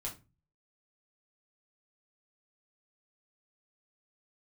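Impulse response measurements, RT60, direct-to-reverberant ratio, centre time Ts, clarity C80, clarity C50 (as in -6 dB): 0.30 s, -3.0 dB, 18 ms, 19.0 dB, 11.5 dB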